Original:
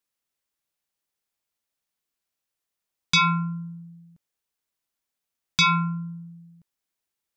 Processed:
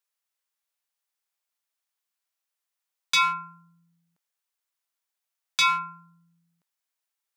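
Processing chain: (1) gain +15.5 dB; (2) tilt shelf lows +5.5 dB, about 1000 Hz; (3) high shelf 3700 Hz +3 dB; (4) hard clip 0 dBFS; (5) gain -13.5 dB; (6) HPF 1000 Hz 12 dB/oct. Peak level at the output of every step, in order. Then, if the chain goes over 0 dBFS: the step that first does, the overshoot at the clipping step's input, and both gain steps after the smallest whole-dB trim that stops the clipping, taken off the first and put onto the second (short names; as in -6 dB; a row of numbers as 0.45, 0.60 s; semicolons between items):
+2.5, +4.0, +4.5, 0.0, -13.5, -11.5 dBFS; step 1, 4.5 dB; step 1 +10.5 dB, step 5 -8.5 dB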